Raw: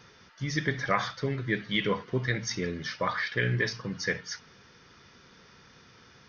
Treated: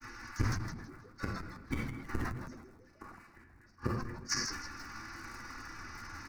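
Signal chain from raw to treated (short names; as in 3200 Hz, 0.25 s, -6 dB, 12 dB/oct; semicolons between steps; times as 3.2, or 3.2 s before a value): cycle switcher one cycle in 3, inverted; bell 200 Hz -14.5 dB 0.26 oct; comb 3.5 ms, depth 77%; dynamic EQ 140 Hz, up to +6 dB, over -46 dBFS, Q 1; limiter -19 dBFS, peak gain reduction 8 dB; grains 0.1 s, grains 20/s, spray 21 ms, pitch spread up and down by 0 st; fixed phaser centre 1400 Hz, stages 4; flipped gate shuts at -30 dBFS, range -42 dB; flange 0.54 Hz, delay 8.1 ms, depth 2.3 ms, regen -36%; frequency-shifting echo 0.16 s, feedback 51%, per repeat -130 Hz, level -10 dB; on a send at -13.5 dB: reverb RT60 2.5 s, pre-delay 3 ms; on the sum: sustainer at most 46 dB/s; gain +14.5 dB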